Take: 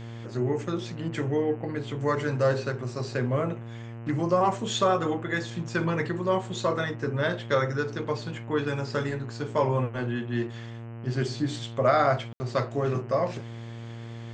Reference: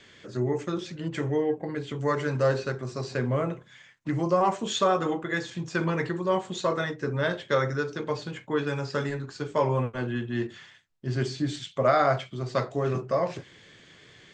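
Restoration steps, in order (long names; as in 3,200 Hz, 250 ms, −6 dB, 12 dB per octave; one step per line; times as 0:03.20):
hum removal 115.7 Hz, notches 26
ambience match 0:12.33–0:12.40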